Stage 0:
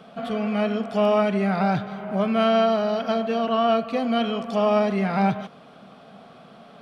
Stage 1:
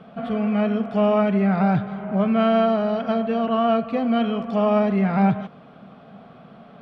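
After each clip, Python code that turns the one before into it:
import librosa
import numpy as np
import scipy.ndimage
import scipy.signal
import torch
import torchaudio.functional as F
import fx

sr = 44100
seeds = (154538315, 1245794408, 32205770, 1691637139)

y = fx.bass_treble(x, sr, bass_db=6, treble_db=-15)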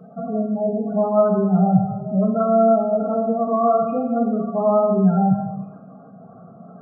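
y = fx.spec_gate(x, sr, threshold_db=-15, keep='strong')
y = fx.rev_gated(y, sr, seeds[0], gate_ms=420, shape='falling', drr_db=0.5)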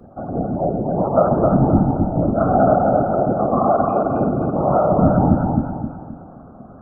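y = fx.whisperise(x, sr, seeds[1])
y = fx.echo_feedback(y, sr, ms=263, feedback_pct=39, wet_db=-3.5)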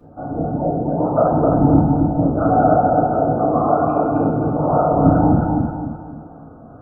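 y = fx.rev_fdn(x, sr, rt60_s=0.53, lf_ratio=0.95, hf_ratio=0.9, size_ms=20.0, drr_db=-4.5)
y = y * 10.0 ** (-5.5 / 20.0)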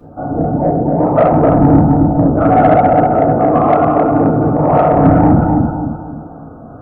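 y = 10.0 ** (-8.0 / 20.0) * np.tanh(x / 10.0 ** (-8.0 / 20.0))
y = y * 10.0 ** (7.0 / 20.0)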